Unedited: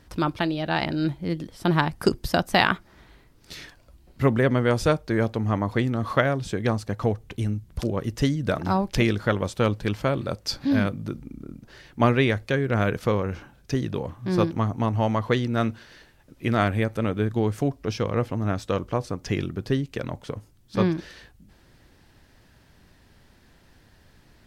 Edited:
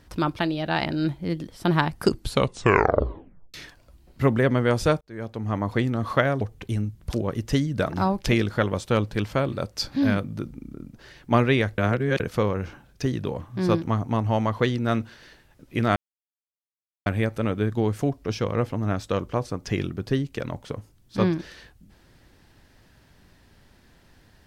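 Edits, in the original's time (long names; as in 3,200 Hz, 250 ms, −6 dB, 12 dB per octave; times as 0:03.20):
0:02.08: tape stop 1.46 s
0:05.01–0:05.70: fade in
0:06.41–0:07.10: remove
0:12.47–0:12.89: reverse
0:16.65: splice in silence 1.10 s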